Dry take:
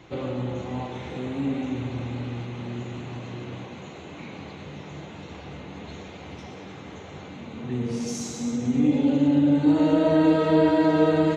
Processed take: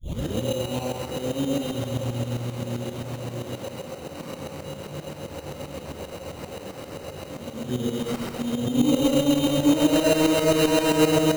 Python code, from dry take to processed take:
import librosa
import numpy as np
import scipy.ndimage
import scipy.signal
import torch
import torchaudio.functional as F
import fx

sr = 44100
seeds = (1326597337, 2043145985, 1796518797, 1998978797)

p1 = fx.tape_start_head(x, sr, length_s=0.42)
p2 = fx.peak_eq(p1, sr, hz=540.0, db=14.0, octaves=0.21)
p3 = fx.sample_hold(p2, sr, seeds[0], rate_hz=3400.0, jitter_pct=0)
p4 = 10.0 ** (-16.0 / 20.0) * np.tanh(p3 / 10.0 ** (-16.0 / 20.0))
p5 = p4 + fx.echo_single(p4, sr, ms=134, db=-6.0, dry=0)
p6 = fx.tremolo_shape(p5, sr, shape='saw_up', hz=7.6, depth_pct=70)
y = p6 * librosa.db_to_amplitude(4.0)